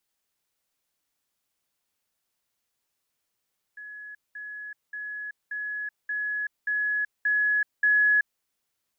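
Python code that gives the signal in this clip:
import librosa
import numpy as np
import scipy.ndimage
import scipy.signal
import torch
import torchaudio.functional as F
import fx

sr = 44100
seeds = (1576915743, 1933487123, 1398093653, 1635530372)

y = fx.level_ladder(sr, hz=1690.0, from_db=-38.5, step_db=3.0, steps=8, dwell_s=0.38, gap_s=0.2)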